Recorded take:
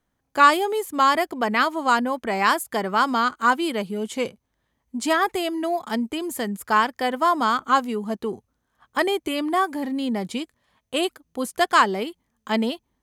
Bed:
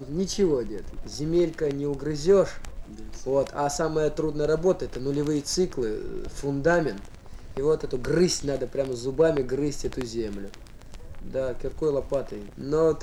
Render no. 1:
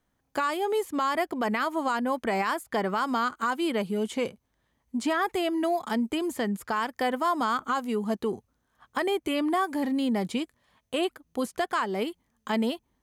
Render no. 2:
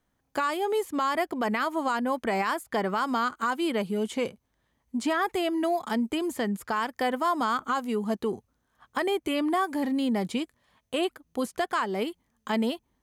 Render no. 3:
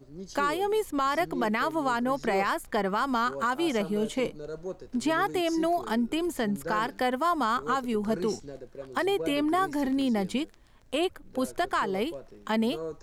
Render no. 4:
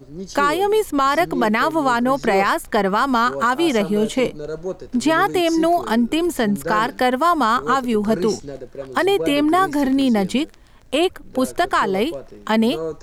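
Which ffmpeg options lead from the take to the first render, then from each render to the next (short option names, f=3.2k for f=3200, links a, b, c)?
-filter_complex "[0:a]acrossover=split=3100|6200[a][b][c];[a]acompressor=threshold=-22dB:ratio=4[d];[b]acompressor=threshold=-47dB:ratio=4[e];[c]acompressor=threshold=-47dB:ratio=4[f];[d][e][f]amix=inputs=3:normalize=0,alimiter=limit=-18dB:level=0:latency=1:release=18"
-af anull
-filter_complex "[1:a]volume=-14.5dB[a];[0:a][a]amix=inputs=2:normalize=0"
-af "volume=9.5dB"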